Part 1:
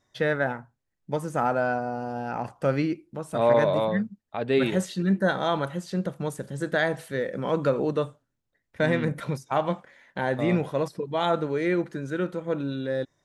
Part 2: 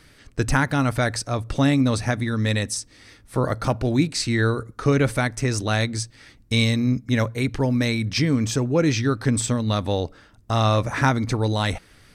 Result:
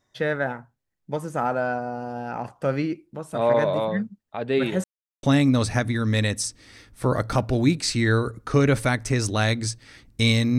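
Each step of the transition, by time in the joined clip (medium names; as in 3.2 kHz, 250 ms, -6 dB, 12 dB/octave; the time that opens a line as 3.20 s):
part 1
4.84–5.23 s: mute
5.23 s: go over to part 2 from 1.55 s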